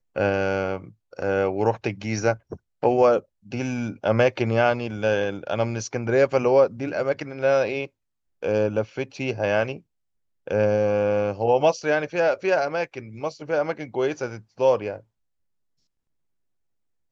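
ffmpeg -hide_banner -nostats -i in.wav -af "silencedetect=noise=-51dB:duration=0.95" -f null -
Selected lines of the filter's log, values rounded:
silence_start: 15.02
silence_end: 17.12 | silence_duration: 2.10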